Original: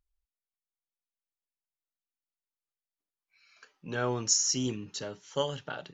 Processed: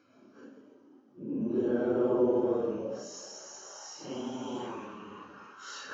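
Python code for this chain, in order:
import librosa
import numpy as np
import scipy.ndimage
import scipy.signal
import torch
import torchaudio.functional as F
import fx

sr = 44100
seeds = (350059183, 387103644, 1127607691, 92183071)

y = fx.bin_compress(x, sr, power=0.6)
y = fx.filter_sweep_bandpass(y, sr, from_hz=280.0, to_hz=3600.0, start_s=3.78, end_s=5.72, q=2.9)
y = fx.peak_eq(y, sr, hz=240.0, db=5.0, octaves=0.88)
y = fx.paulstretch(y, sr, seeds[0], factor=4.0, window_s=0.05, from_s=3.53)
y = y * librosa.db_to_amplitude(6.0)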